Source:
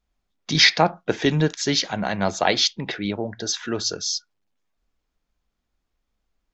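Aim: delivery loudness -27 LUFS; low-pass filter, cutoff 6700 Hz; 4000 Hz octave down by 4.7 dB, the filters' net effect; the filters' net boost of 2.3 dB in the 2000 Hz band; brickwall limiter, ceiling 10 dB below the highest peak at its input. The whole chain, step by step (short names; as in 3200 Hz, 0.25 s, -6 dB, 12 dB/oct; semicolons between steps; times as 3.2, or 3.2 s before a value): LPF 6700 Hz; bell 2000 Hz +4 dB; bell 4000 Hz -6 dB; gain -2 dB; limiter -12.5 dBFS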